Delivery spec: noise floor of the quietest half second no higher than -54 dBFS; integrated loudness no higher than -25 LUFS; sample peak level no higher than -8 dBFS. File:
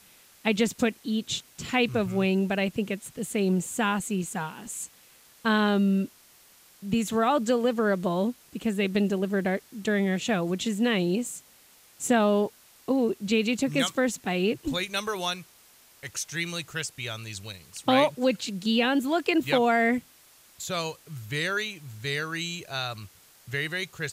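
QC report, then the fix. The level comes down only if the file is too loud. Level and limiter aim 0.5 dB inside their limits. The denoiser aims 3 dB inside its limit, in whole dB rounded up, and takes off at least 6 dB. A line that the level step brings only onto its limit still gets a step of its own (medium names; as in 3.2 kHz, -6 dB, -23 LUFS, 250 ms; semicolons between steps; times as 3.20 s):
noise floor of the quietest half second -56 dBFS: pass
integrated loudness -27.0 LUFS: pass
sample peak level -9.5 dBFS: pass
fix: none needed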